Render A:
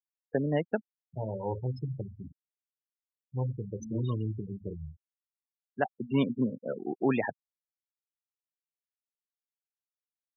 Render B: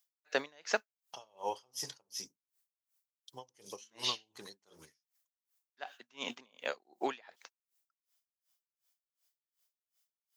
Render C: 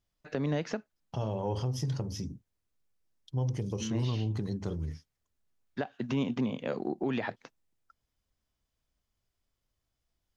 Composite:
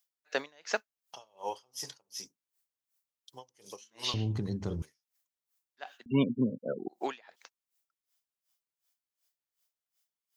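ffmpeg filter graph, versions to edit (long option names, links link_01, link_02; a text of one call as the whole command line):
ffmpeg -i take0.wav -i take1.wav -i take2.wav -filter_complex "[1:a]asplit=3[link_01][link_02][link_03];[link_01]atrim=end=4.142[link_04];[2:a]atrim=start=4.138:end=4.822[link_05];[link_02]atrim=start=4.818:end=6.062[link_06];[0:a]atrim=start=6.058:end=6.882[link_07];[link_03]atrim=start=6.878[link_08];[link_04][link_05]acrossfade=duration=0.004:curve1=hsin:curve2=hsin[link_09];[link_09][link_06]acrossfade=duration=0.004:curve1=hsin:curve2=hsin[link_10];[link_10][link_07]acrossfade=duration=0.004:curve1=hsin:curve2=hsin[link_11];[link_11][link_08]acrossfade=duration=0.004:curve1=hsin:curve2=hsin" out.wav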